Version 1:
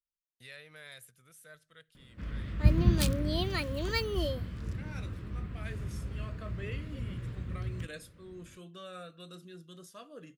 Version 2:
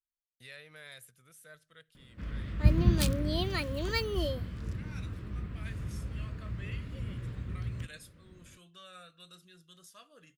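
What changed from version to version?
second voice: add parametric band 320 Hz −13.5 dB 2.8 octaves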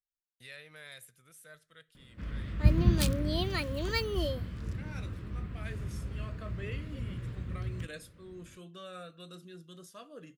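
second voice: add parametric band 320 Hz +13.5 dB 2.8 octaves
reverb: on, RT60 0.50 s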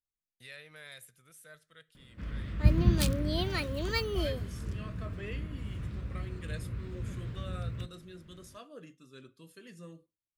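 second voice: entry −1.40 s

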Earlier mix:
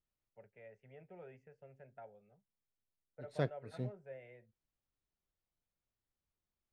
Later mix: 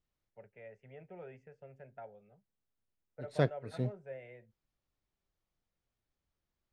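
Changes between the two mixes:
first voice +4.5 dB
second voice +6.0 dB

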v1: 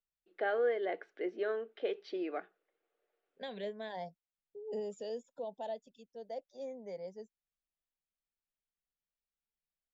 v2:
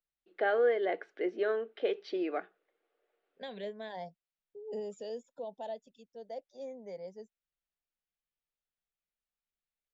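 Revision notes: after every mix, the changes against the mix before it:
first voice +4.0 dB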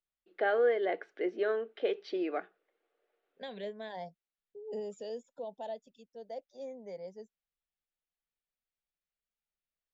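nothing changed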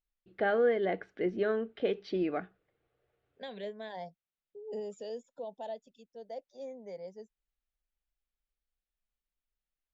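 first voice: remove high-pass filter 330 Hz 24 dB per octave

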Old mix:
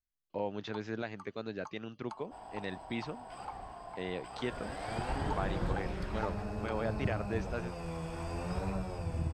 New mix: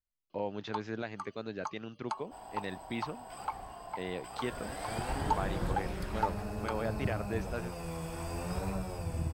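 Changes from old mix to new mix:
first sound +9.5 dB
second sound: remove high-frequency loss of the air 66 metres

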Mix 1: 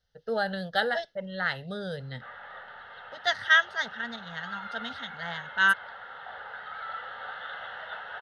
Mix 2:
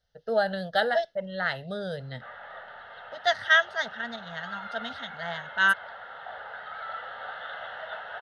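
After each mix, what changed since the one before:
master: add parametric band 650 Hz +8.5 dB 0.3 octaves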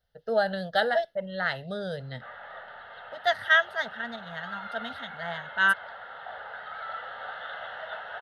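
second voice: remove low-pass with resonance 6,200 Hz, resonance Q 2.4

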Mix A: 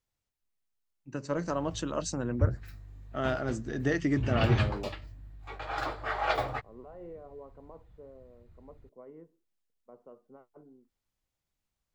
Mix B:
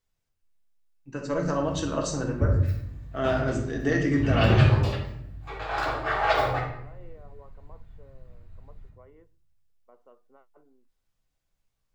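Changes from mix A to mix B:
second voice: add spectral tilt +4.5 dB per octave
reverb: on, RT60 0.70 s

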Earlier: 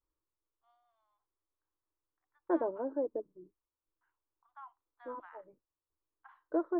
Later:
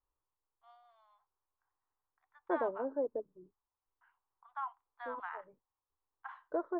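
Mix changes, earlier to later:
first voice +11.0 dB
master: add parametric band 320 Hz −10 dB 0.26 octaves

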